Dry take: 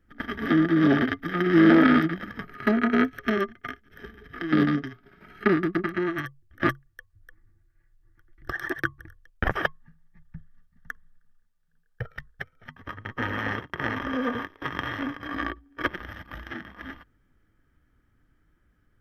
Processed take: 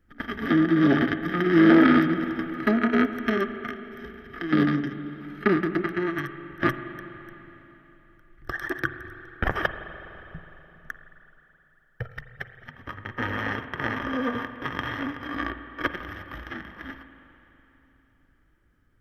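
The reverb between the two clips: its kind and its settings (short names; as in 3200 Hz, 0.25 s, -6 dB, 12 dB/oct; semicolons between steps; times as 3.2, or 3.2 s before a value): spring tank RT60 3.6 s, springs 41/52 ms, chirp 80 ms, DRR 9.5 dB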